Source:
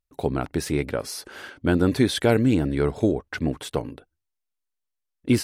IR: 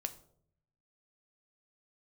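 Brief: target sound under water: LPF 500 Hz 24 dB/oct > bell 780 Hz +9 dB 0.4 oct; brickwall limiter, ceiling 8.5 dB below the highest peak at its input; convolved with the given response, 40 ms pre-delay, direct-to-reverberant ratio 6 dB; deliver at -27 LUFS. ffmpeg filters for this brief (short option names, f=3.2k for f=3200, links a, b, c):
-filter_complex "[0:a]alimiter=limit=-14.5dB:level=0:latency=1,asplit=2[a][b];[1:a]atrim=start_sample=2205,adelay=40[c];[b][c]afir=irnorm=-1:irlink=0,volume=-5dB[d];[a][d]amix=inputs=2:normalize=0,lowpass=f=500:w=0.5412,lowpass=f=500:w=1.3066,equalizer=f=780:t=o:w=0.4:g=9"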